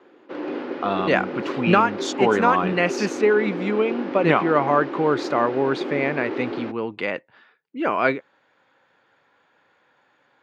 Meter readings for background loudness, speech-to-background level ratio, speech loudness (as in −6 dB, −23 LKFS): −30.0 LKFS, 8.0 dB, −22.0 LKFS